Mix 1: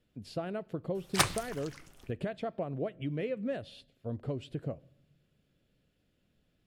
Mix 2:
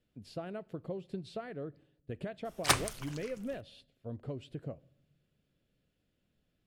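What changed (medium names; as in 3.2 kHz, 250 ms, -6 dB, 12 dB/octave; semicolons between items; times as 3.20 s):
speech -4.5 dB; background: entry +1.50 s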